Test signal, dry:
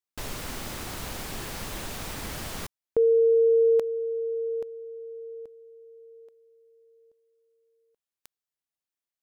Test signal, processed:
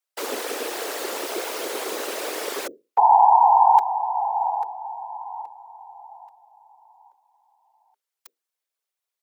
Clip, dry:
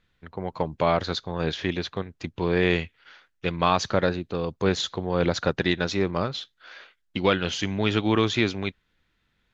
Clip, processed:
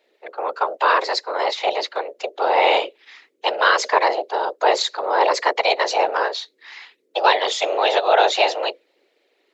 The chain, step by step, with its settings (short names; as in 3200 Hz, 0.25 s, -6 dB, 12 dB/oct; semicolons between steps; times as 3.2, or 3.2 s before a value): bell 90 Hz +4 dB 0.23 oct; short-mantissa float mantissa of 8-bit; wow and flutter 0.6 Hz 51 cents; frequency shift +400 Hz; whisperiser; gain +5.5 dB